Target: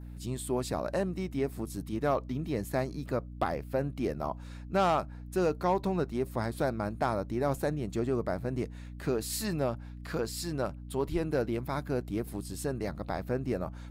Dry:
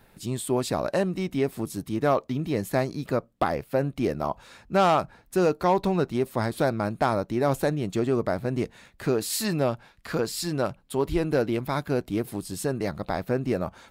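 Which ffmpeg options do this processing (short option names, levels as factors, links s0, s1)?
-af "adynamicequalizer=threshold=0.00316:dfrequency=3200:dqfactor=1.6:tfrequency=3200:tqfactor=1.6:attack=5:release=100:ratio=0.375:range=2.5:mode=cutabove:tftype=bell,aeval=exprs='val(0)+0.0158*(sin(2*PI*60*n/s)+sin(2*PI*2*60*n/s)/2+sin(2*PI*3*60*n/s)/3+sin(2*PI*4*60*n/s)/4+sin(2*PI*5*60*n/s)/5)':c=same,volume=0.501"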